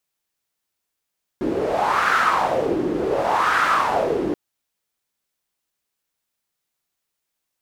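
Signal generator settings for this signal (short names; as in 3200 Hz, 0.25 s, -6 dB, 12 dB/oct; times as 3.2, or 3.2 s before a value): wind-like swept noise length 2.93 s, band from 330 Hz, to 1400 Hz, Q 4.5, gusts 2, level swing 4 dB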